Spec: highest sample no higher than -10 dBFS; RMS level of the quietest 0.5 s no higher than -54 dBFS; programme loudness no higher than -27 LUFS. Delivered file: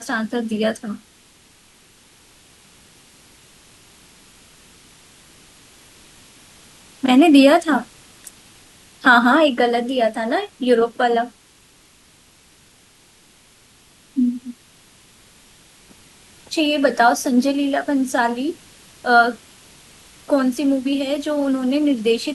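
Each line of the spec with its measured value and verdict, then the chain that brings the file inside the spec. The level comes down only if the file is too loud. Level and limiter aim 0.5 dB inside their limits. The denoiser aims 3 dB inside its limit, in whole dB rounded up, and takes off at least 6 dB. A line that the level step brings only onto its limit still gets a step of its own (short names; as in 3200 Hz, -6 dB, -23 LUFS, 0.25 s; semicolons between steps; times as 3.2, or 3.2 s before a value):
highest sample -2.0 dBFS: fail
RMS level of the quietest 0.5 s -52 dBFS: fail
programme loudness -18.0 LUFS: fail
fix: gain -9.5 dB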